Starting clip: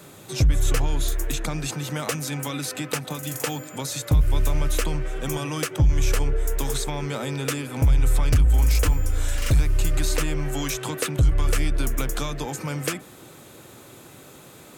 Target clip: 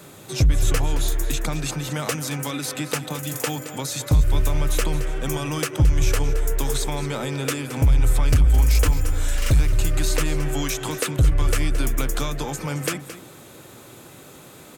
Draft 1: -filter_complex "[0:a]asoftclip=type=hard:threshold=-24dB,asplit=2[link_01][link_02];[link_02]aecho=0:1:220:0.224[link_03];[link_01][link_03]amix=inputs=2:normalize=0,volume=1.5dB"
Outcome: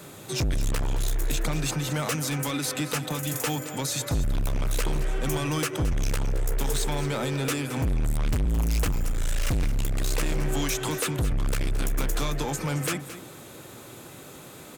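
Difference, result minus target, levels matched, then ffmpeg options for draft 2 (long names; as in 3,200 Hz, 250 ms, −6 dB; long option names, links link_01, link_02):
hard clipping: distortion +35 dB
-filter_complex "[0:a]asoftclip=type=hard:threshold=-12.5dB,asplit=2[link_01][link_02];[link_02]aecho=0:1:220:0.224[link_03];[link_01][link_03]amix=inputs=2:normalize=0,volume=1.5dB"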